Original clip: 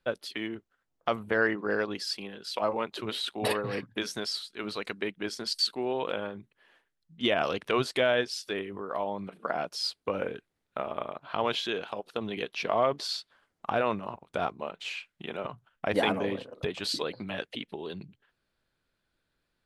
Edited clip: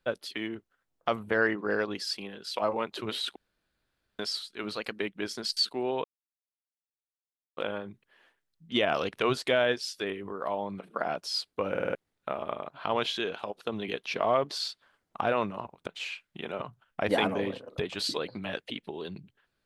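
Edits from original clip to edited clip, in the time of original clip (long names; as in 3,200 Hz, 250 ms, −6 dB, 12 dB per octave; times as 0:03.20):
0:03.36–0:04.19: fill with room tone
0:04.76–0:05.02: play speed 108%
0:06.06: splice in silence 1.53 s
0:10.19: stutter in place 0.05 s, 5 plays
0:14.36–0:14.72: remove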